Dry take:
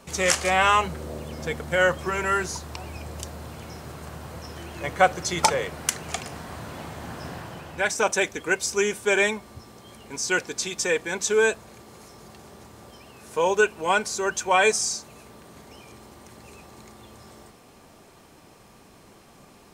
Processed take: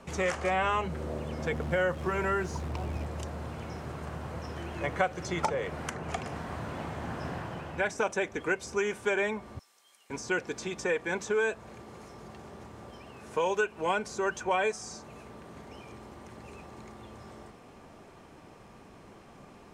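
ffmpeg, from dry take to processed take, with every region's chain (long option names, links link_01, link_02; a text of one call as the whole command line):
ffmpeg -i in.wav -filter_complex "[0:a]asettb=1/sr,asplit=3[link_01][link_02][link_03];[link_01]atrim=end=1.524[link_04];[link_02]atrim=start=1.52:end=3.06,asetpts=PTS-STARTPTS,afade=type=in:duration=0.004:curve=qsin,afade=type=out:start_time=1.536:duration=0.004:curve=qsin,tiltshelf=frequency=800:gain=5.5,acrusher=bits=8:dc=4:mix=0:aa=0.000001[link_05];[link_03]atrim=start=3.056[link_06];[link_04][link_05]acrossfade=duration=0.004:curve1=hsin:curve2=qsin[link_07];[link_07][link_06]acrossfade=duration=0.004:curve1=qsin:curve2=hsin,asettb=1/sr,asplit=3[link_08][link_09][link_10];[link_08]atrim=end=9.594[link_11];[link_09]atrim=start=9.59:end=10.1,asetpts=PTS-STARTPTS,afade=type=in:duration=0.004:curve=qsin,afade=type=out:start_time=0.506:duration=0.004:curve=qsin,highpass=frequency=470:poles=1,aderivative[link_12];[link_10]atrim=start=10.096[link_13];[link_11][link_12]acrossfade=duration=0.004:curve1=hsin:curve2=qsin[link_14];[link_14][link_13]acrossfade=duration=0.004:curve1=qsin:curve2=hsin,equalizer=frequency=4200:width_type=o:width=0.74:gain=-3.5,acrossover=split=640|1700[link_15][link_16][link_17];[link_15]acompressor=threshold=-31dB:ratio=4[link_18];[link_16]acompressor=threshold=-33dB:ratio=4[link_19];[link_17]acompressor=threshold=-35dB:ratio=4[link_20];[link_18][link_19][link_20]amix=inputs=3:normalize=0,aemphasis=mode=reproduction:type=50fm" out.wav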